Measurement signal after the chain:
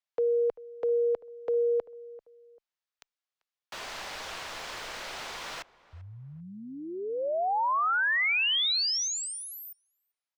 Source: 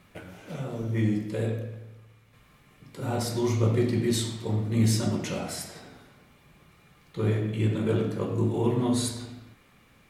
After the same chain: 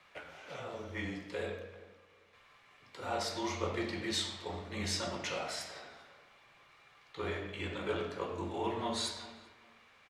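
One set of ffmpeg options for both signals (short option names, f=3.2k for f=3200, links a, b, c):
-filter_complex "[0:a]acrossover=split=530 6400:gain=0.112 1 0.126[a][b][c];[a][b][c]amix=inputs=3:normalize=0,afreqshift=-20,asplit=2[d][e];[e]adelay=391,lowpass=f=1.5k:p=1,volume=-19dB,asplit=2[f][g];[g]adelay=391,lowpass=f=1.5k:p=1,volume=0.29[h];[d][f][h]amix=inputs=3:normalize=0"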